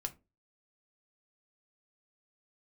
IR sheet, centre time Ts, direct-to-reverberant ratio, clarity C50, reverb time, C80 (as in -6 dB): 4 ms, 5.0 dB, 19.0 dB, 0.30 s, 27.0 dB